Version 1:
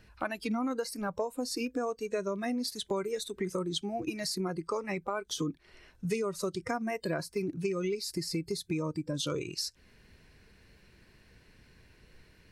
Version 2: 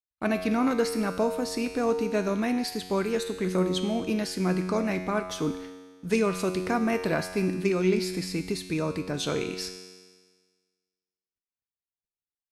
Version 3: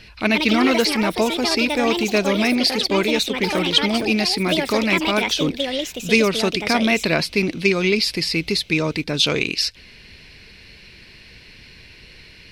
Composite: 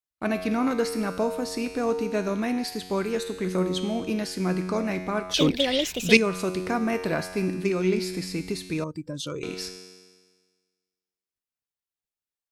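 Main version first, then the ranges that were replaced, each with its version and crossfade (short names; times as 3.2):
2
5.34–6.17 from 3
8.84–9.43 from 1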